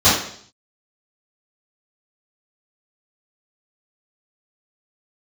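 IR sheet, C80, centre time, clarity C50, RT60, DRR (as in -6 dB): 7.0 dB, 48 ms, 2.5 dB, 0.60 s, -14.5 dB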